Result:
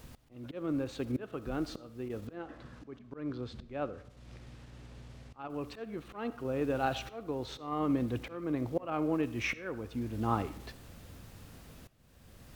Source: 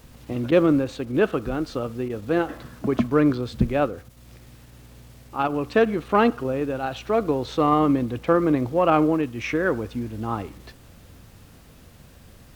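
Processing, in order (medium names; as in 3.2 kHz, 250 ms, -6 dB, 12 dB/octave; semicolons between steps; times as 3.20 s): slow attack 731 ms; 2.27–5.50 s: distance through air 80 m; reverberation RT60 0.70 s, pre-delay 25 ms, DRR 17 dB; trim -3 dB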